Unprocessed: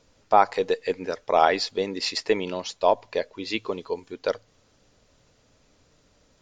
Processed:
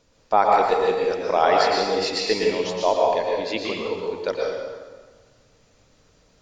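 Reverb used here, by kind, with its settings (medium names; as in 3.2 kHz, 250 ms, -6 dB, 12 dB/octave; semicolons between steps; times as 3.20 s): plate-style reverb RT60 1.5 s, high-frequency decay 0.8×, pre-delay 100 ms, DRR -2.5 dB; trim -1 dB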